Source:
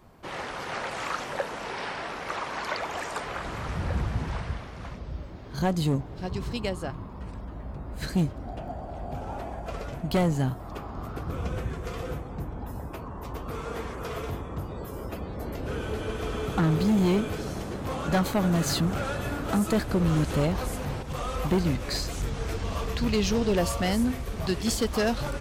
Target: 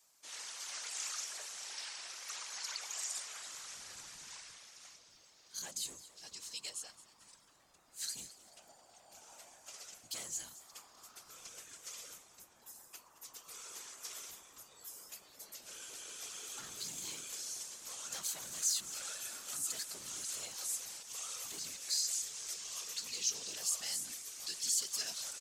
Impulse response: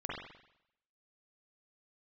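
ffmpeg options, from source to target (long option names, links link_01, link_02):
-filter_complex "[0:a]aemphasis=mode=production:type=50kf,alimiter=limit=-19.5dB:level=0:latency=1:release=17,bandpass=frequency=6700:width_type=q:width=2:csg=0,afftfilt=real='hypot(re,im)*cos(2*PI*random(0))':imag='hypot(re,im)*sin(2*PI*random(1))':win_size=512:overlap=0.75,asplit=4[link_01][link_02][link_03][link_04];[link_02]adelay=219,afreqshift=140,volume=-16.5dB[link_05];[link_03]adelay=438,afreqshift=280,volume=-24.5dB[link_06];[link_04]adelay=657,afreqshift=420,volume=-32.4dB[link_07];[link_01][link_05][link_06][link_07]amix=inputs=4:normalize=0,volume=7dB"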